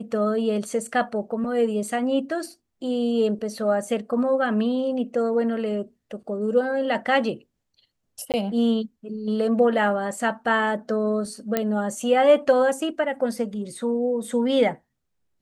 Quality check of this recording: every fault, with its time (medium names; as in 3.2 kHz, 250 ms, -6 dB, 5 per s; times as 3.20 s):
8.32–8.34 s: dropout 18 ms
11.57 s: pop -8 dBFS